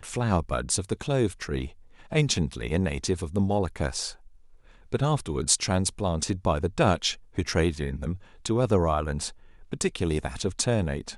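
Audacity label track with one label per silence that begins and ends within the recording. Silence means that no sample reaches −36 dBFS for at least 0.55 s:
4.120000	4.920000	silence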